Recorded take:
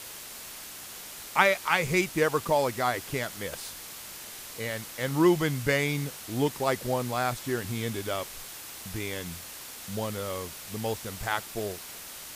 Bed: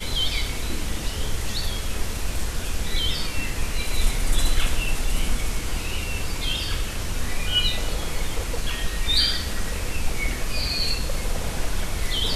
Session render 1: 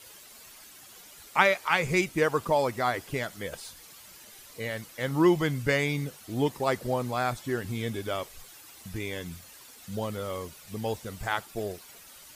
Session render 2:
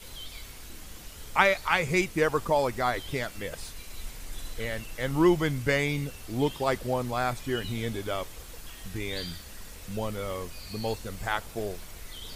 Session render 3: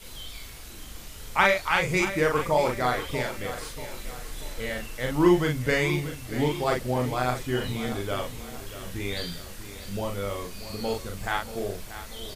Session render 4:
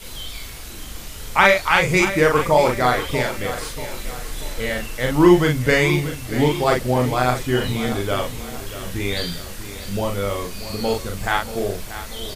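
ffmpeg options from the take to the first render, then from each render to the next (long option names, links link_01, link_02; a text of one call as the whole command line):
ffmpeg -i in.wav -af "afftdn=noise_reduction=11:noise_floor=-43" out.wav
ffmpeg -i in.wav -i bed.wav -filter_complex "[1:a]volume=-18.5dB[link_01];[0:a][link_01]amix=inputs=2:normalize=0" out.wav
ffmpeg -i in.wav -filter_complex "[0:a]asplit=2[link_01][link_02];[link_02]adelay=40,volume=-3dB[link_03];[link_01][link_03]amix=inputs=2:normalize=0,aecho=1:1:635|1270|1905|2540|3175:0.224|0.105|0.0495|0.0232|0.0109" out.wav
ffmpeg -i in.wav -af "volume=7.5dB,alimiter=limit=-1dB:level=0:latency=1" out.wav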